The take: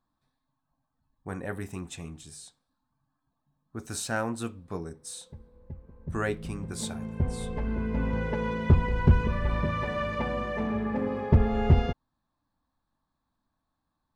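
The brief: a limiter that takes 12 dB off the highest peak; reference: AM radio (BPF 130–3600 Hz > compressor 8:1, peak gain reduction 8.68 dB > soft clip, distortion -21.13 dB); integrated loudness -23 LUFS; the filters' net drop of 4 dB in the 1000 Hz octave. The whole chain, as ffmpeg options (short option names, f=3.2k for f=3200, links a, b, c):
-af "equalizer=f=1k:t=o:g=-5,alimiter=limit=-23dB:level=0:latency=1,highpass=130,lowpass=3.6k,acompressor=threshold=-36dB:ratio=8,asoftclip=threshold=-31dB,volume=19.5dB"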